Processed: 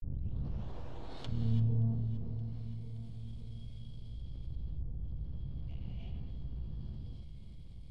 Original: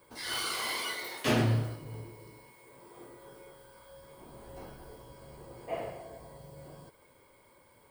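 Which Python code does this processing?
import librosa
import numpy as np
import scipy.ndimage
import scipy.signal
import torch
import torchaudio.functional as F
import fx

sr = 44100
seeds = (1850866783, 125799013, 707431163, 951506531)

y = fx.tape_start_head(x, sr, length_s=0.97)
y = scipy.signal.sosfilt(scipy.signal.cheby2(4, 40, [190.0, 1900.0], 'bandstop', fs=sr, output='sos'), y)
y = fx.env_lowpass(y, sr, base_hz=1500.0, full_db=-38.5)
y = fx.low_shelf(y, sr, hz=250.0, db=10.0)
y = np.maximum(y, 0.0)
y = fx.env_lowpass_down(y, sr, base_hz=630.0, full_db=-43.0)
y = fx.echo_feedback(y, sr, ms=573, feedback_pct=48, wet_db=-19)
y = fx.rev_gated(y, sr, seeds[0], gate_ms=360, shape='rising', drr_db=-4.5)
y = fx.env_flatten(y, sr, amount_pct=50)
y = F.gain(torch.from_numpy(y), -3.5).numpy()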